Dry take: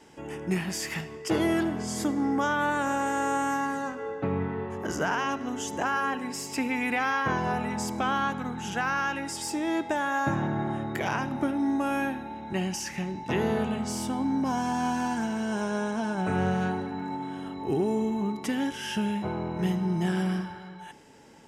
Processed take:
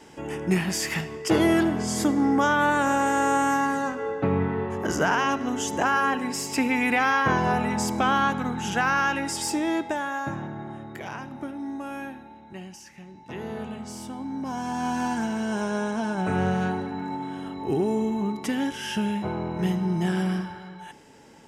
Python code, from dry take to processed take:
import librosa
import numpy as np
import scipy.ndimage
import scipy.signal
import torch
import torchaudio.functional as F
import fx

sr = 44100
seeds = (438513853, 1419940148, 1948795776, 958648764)

y = fx.gain(x, sr, db=fx.line((9.49, 5.0), (10.55, -7.0), (12.18, -7.0), (12.95, -13.5), (13.65, -6.0), (14.28, -6.0), (15.03, 2.0)))